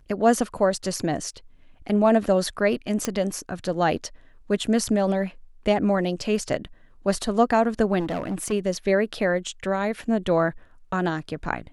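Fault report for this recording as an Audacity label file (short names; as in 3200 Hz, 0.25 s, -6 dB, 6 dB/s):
3.050000	3.050000	pop -9 dBFS
7.990000	8.530000	clipped -23.5 dBFS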